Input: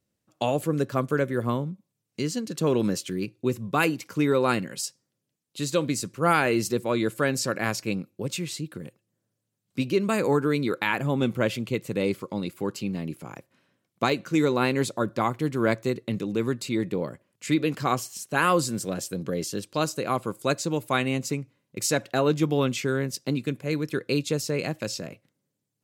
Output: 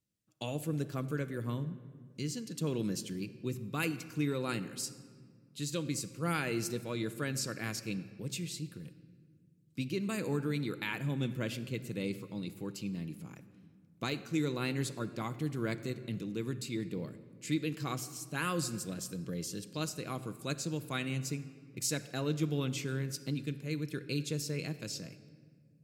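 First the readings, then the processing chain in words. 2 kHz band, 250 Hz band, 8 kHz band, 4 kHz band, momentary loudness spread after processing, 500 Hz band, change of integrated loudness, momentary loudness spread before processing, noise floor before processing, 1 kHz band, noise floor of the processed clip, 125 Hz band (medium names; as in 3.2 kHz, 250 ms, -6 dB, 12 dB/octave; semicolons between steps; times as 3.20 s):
-11.0 dB, -9.5 dB, -6.5 dB, -7.5 dB, 8 LU, -13.5 dB, -10.0 dB, 10 LU, -81 dBFS, -15.0 dB, -62 dBFS, -6.0 dB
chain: peaking EQ 780 Hz -10.5 dB 2.3 oct; simulated room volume 3100 m³, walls mixed, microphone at 0.59 m; trim -6.5 dB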